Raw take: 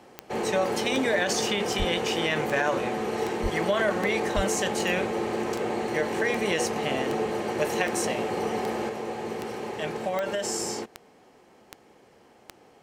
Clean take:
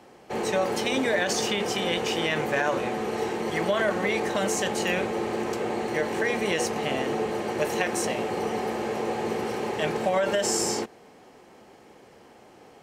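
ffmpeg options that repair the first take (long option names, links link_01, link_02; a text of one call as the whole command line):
ffmpeg -i in.wav -filter_complex "[0:a]adeclick=threshold=4,asplit=3[link_01][link_02][link_03];[link_01]afade=type=out:start_time=1.78:duration=0.02[link_04];[link_02]highpass=frequency=140:width=0.5412,highpass=frequency=140:width=1.3066,afade=type=in:start_time=1.78:duration=0.02,afade=type=out:start_time=1.9:duration=0.02[link_05];[link_03]afade=type=in:start_time=1.9:duration=0.02[link_06];[link_04][link_05][link_06]amix=inputs=3:normalize=0,asplit=3[link_07][link_08][link_09];[link_07]afade=type=out:start_time=3.42:duration=0.02[link_10];[link_08]highpass=frequency=140:width=0.5412,highpass=frequency=140:width=1.3066,afade=type=in:start_time=3.42:duration=0.02,afade=type=out:start_time=3.54:duration=0.02[link_11];[link_09]afade=type=in:start_time=3.54:duration=0.02[link_12];[link_10][link_11][link_12]amix=inputs=3:normalize=0,asplit=3[link_13][link_14][link_15];[link_13]afade=type=out:start_time=4.35:duration=0.02[link_16];[link_14]highpass=frequency=140:width=0.5412,highpass=frequency=140:width=1.3066,afade=type=in:start_time=4.35:duration=0.02,afade=type=out:start_time=4.47:duration=0.02[link_17];[link_15]afade=type=in:start_time=4.47:duration=0.02[link_18];[link_16][link_17][link_18]amix=inputs=3:normalize=0,asetnsamples=nb_out_samples=441:pad=0,asendcmd='8.89 volume volume 4.5dB',volume=0dB" out.wav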